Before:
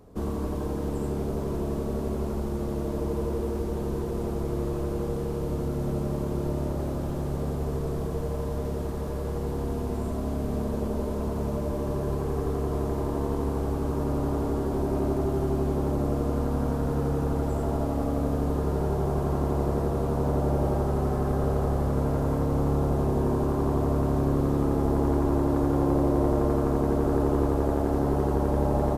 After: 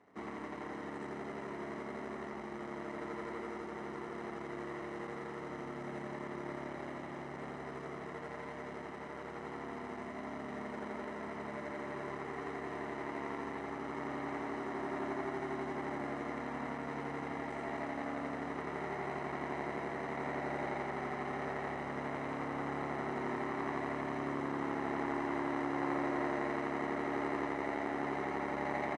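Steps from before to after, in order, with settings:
running median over 41 samples
loudspeaker in its box 430–7,800 Hz, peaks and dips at 480 Hz −3 dB, 1,400 Hz +7 dB, 2,000 Hz +5 dB, 4,600 Hz −7 dB, 7,200 Hz −6 dB
comb filter 1 ms, depth 47%
level −3.5 dB

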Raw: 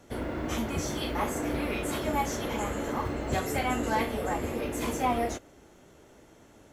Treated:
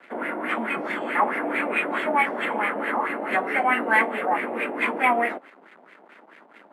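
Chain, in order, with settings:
parametric band 2,200 Hz +12.5 dB 1.8 octaves
bit-depth reduction 8 bits, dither none
Butterworth high-pass 190 Hz 48 dB per octave
bad sample-rate conversion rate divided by 4×, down filtered, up zero stuff
auto-filter low-pass sine 4.6 Hz 740–2,200 Hz

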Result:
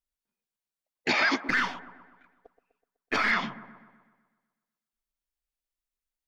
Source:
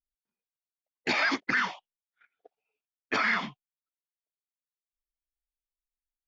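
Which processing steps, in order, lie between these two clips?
0:01.46–0:03.31: gain on one half-wave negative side −3 dB
delay with a low-pass on its return 125 ms, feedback 54%, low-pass 1,100 Hz, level −12 dB
level +2 dB

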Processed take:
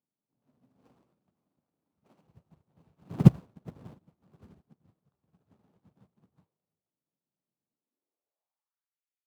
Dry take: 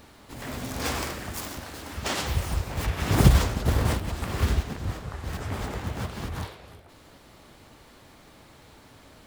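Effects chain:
running median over 25 samples
high-pass filter sweep 160 Hz → 2,300 Hz, 0:07.67–0:09.04
expander for the loud parts 2.5 to 1, over −37 dBFS
level −1 dB

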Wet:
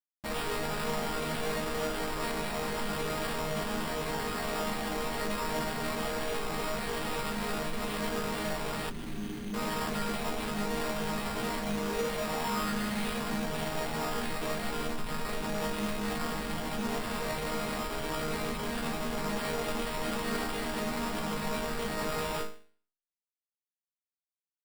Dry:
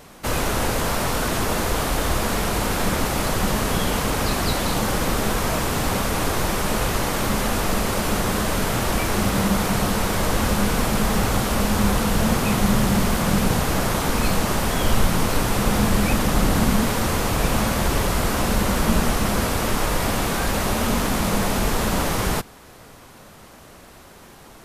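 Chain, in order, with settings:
0:11.82–0:13.15: parametric band 350 Hz → 2,900 Hz +14 dB 0.45 octaves
comparator with hysteresis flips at −26 dBFS
mains-hum notches 50/100/150/200 Hz
resonators tuned to a chord D#3 sus4, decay 0.45 s
0:08.90–0:09.54: gain on a spectral selection 430–6,600 Hz −29 dB
decimation without filtering 7×
level +5.5 dB

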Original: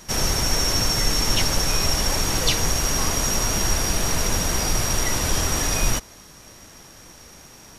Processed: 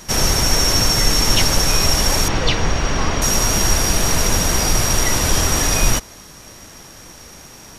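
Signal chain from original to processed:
0:02.28–0:03.22: low-pass filter 3,400 Hz 12 dB per octave
level +5.5 dB

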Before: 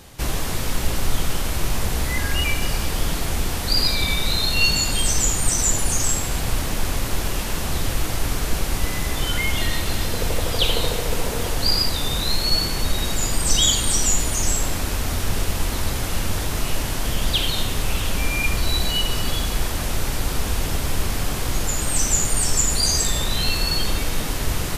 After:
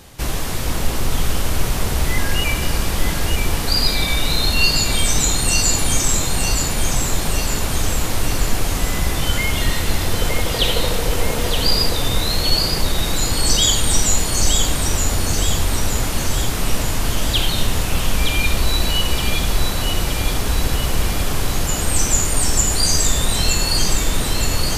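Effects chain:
delay that swaps between a low-pass and a high-pass 459 ms, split 1,300 Hz, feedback 75%, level −3 dB
level +1.5 dB

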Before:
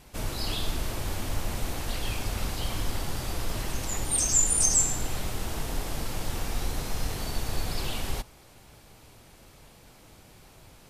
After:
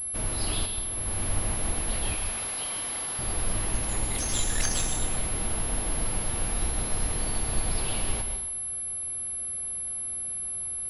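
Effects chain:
0:00.66–0:01.23: fade in
0:02.15–0:03.19: high-pass filter 730 Hz 6 dB per octave
dense smooth reverb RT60 0.72 s, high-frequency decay 1×, pre-delay 115 ms, DRR 5.5 dB
switching amplifier with a slow clock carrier 11,000 Hz

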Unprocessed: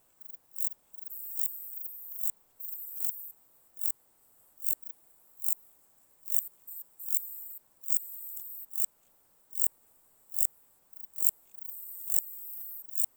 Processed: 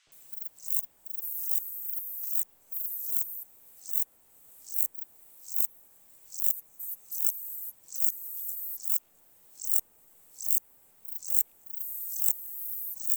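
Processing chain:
pitch-shifted copies added −4 semitones −10 dB, +12 semitones −5 dB
three-band delay without the direct sound mids, lows, highs 70/120 ms, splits 1,300/5,500 Hz
multiband upward and downward compressor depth 40%
level +2.5 dB

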